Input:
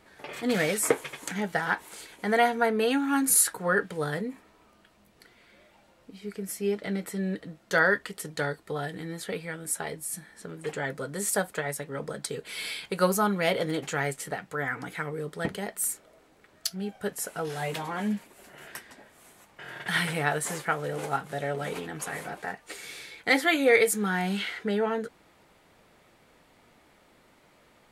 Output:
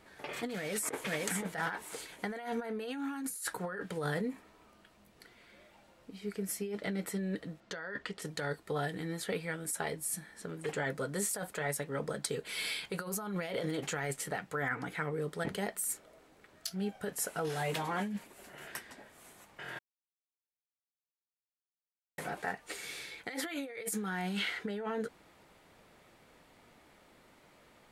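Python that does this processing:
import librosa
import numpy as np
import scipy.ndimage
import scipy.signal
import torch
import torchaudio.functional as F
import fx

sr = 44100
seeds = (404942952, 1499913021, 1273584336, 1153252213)

y = fx.echo_throw(x, sr, start_s=0.54, length_s=0.59, ms=520, feedback_pct=20, wet_db=-8.5)
y = fx.lowpass(y, sr, hz=5100.0, slope=12, at=(7.6, 8.22))
y = fx.high_shelf(y, sr, hz=4400.0, db=-6.0, at=(14.68, 15.22))
y = fx.edit(y, sr, fx.silence(start_s=19.79, length_s=2.39), tone=tone)
y = fx.over_compress(y, sr, threshold_db=-31.0, ratio=-1.0)
y = y * 10.0 ** (-5.0 / 20.0)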